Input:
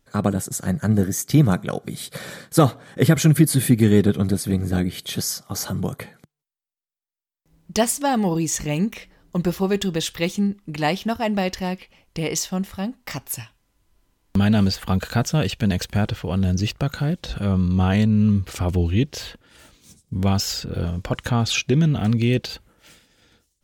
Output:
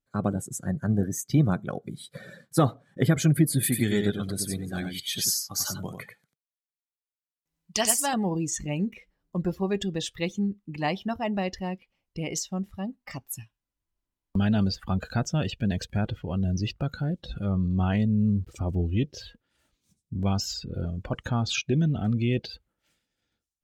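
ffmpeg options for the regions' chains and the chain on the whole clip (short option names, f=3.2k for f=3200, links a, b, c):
-filter_complex "[0:a]asettb=1/sr,asplit=3[a][b][c];[a]atrim=end=3.634[d];[b]atrim=start=3.63:end=8.14,asetpts=PTS-STARTPTS,afade=t=in:d=0.004:c=qsin,afade=t=out:st=4.506:d=0.004:c=qsin,tiltshelf=f=920:g=-6.5,aecho=1:1:92:0.562,atrim=end_sample=198891[e];[c]atrim=start=8.136[f];[d][e]acrossfade=d=0.004:c1=hsin:c2=qsin[g];[g][f]acrossfade=d=0.004:c1=qsin:c2=hsin,asettb=1/sr,asplit=3[h][i][j];[h]atrim=end=17.974[k];[i]atrim=start=17.97:end=18.97,asetpts=PTS-STARTPTS,afade=t=in:d=0.004:c=qsin,afade=t=out:st=0.996:d=0.004:c=qsin,equalizer=f=1.8k:w=0.59:g=-3.5,aeval=exprs='val(0)*gte(abs(val(0)),0.00562)':c=same[l];[j]atrim=start=18.966[m];[k][l]acrossfade=d=0.004:c1=hsin:c2=qsin[n];[n][m]acrossfade=d=0.004:c1=qsin:c2=hsin,afftdn=nr=16:nf=-33,bandreject=f=460:w=15,volume=-6dB"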